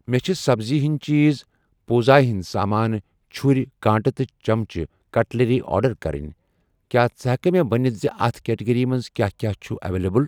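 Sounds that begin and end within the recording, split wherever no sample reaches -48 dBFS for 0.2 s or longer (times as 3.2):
1.88–3.01
3.31–4.86
5.14–6.33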